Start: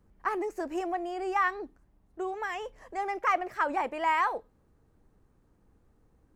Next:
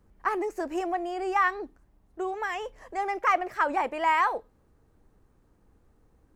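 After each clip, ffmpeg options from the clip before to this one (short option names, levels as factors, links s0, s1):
-af "equalizer=f=160:w=0.86:g=-2.5,volume=1.41"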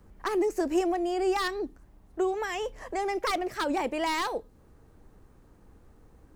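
-filter_complex "[0:a]volume=8.41,asoftclip=hard,volume=0.119,acrossover=split=460|3000[s0][s1][s2];[s1]acompressor=threshold=0.00562:ratio=3[s3];[s0][s3][s2]amix=inputs=3:normalize=0,volume=2.24"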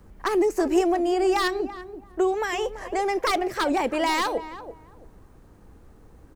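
-filter_complex "[0:a]asplit=2[s0][s1];[s1]adelay=335,lowpass=f=1200:p=1,volume=0.266,asplit=2[s2][s3];[s3]adelay=335,lowpass=f=1200:p=1,volume=0.23,asplit=2[s4][s5];[s5]adelay=335,lowpass=f=1200:p=1,volume=0.23[s6];[s0][s2][s4][s6]amix=inputs=4:normalize=0,volume=1.78"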